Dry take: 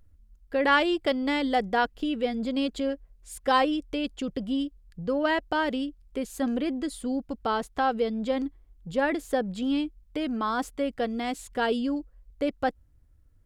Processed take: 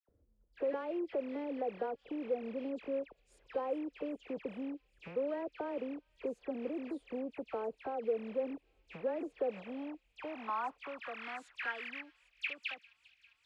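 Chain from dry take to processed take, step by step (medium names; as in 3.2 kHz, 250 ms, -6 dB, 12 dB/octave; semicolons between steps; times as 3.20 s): rattle on loud lows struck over -46 dBFS, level -16 dBFS; low-pass 10 kHz; bass shelf 140 Hz +4.5 dB; in parallel at -1.5 dB: peak limiter -19.5 dBFS, peak gain reduction 11.5 dB; on the sum: compression 3:1, threshold -31 dBFS, peak gain reduction 13 dB; phase dispersion lows, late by 88 ms, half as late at 2 kHz; saturation -25.5 dBFS, distortion -17 dB; band-pass sweep 480 Hz -> 3.4 kHz, 9.36–13.04 s; on a send: feedback echo behind a high-pass 400 ms, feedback 78%, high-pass 4.4 kHz, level -14.5 dB; on the sum: trim +2 dB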